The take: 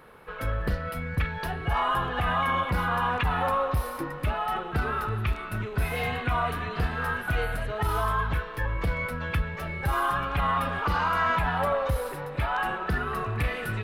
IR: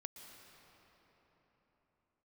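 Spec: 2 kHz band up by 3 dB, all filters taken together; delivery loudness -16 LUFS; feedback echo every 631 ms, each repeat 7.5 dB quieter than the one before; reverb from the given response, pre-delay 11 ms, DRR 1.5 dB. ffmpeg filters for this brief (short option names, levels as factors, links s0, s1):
-filter_complex "[0:a]equalizer=f=2000:t=o:g=4,aecho=1:1:631|1262|1893|2524|3155:0.422|0.177|0.0744|0.0312|0.0131,asplit=2[s0][s1];[1:a]atrim=start_sample=2205,adelay=11[s2];[s1][s2]afir=irnorm=-1:irlink=0,volume=1.41[s3];[s0][s3]amix=inputs=2:normalize=0,volume=2.51"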